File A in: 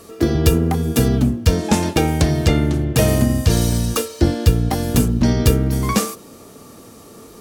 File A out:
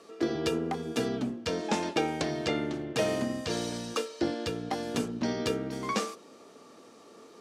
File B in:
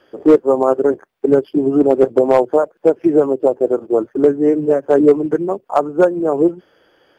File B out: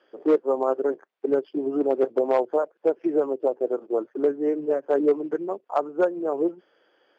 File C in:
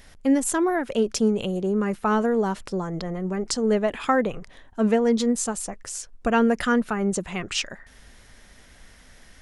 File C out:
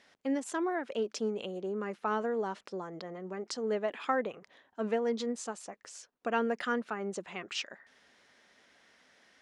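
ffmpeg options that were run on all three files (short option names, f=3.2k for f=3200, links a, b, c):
-af "highpass=300,lowpass=5.4k,volume=-8.5dB"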